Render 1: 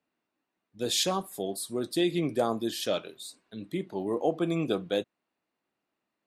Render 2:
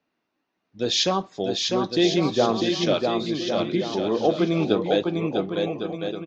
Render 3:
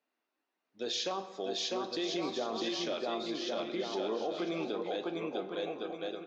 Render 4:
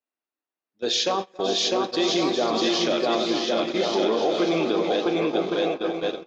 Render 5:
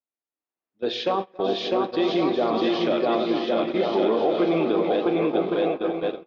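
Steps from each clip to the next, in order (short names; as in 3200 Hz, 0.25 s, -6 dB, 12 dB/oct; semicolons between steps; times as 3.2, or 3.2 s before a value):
steep low-pass 6400 Hz 72 dB/oct; on a send: bouncing-ball echo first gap 0.65 s, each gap 0.7×, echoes 5; on the sum: gain +6 dB
HPF 340 Hz 12 dB/oct; limiter -18.5 dBFS, peak gain reduction 10 dB; on a send at -9.5 dB: reverb RT60 1.9 s, pre-delay 6 ms; on the sum: gain -7.5 dB
echo with dull and thin repeats by turns 0.274 s, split 2300 Hz, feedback 79%, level -8 dB; in parallel at 0 dB: limiter -31.5 dBFS, peak gain reduction 8.5 dB; on the sum: gate -32 dBFS, range -24 dB; gain +8 dB
bell 1600 Hz -2.5 dB 0.28 oct; AGC gain up to 8 dB; air absorption 360 m; gain -5.5 dB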